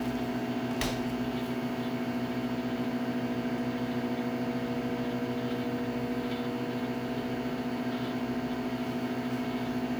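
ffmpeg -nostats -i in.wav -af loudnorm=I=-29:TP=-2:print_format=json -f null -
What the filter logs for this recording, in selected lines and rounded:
"input_i" : "-32.8",
"input_tp" : "-13.5",
"input_lra" : "0.6",
"input_thresh" : "-42.8",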